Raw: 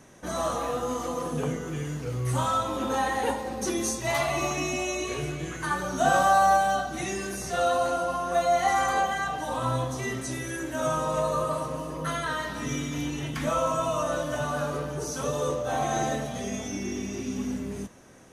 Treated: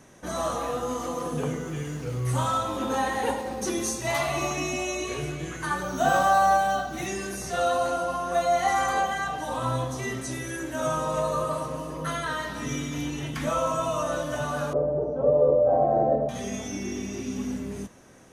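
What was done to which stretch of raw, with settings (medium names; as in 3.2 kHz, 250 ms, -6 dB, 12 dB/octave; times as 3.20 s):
0.92–4.43 s: bit-crushed delay 105 ms, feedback 35%, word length 9-bit, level -13 dB
5.83–7.07 s: decimation joined by straight lines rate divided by 2×
14.73–16.29 s: resonant low-pass 600 Hz, resonance Q 3.9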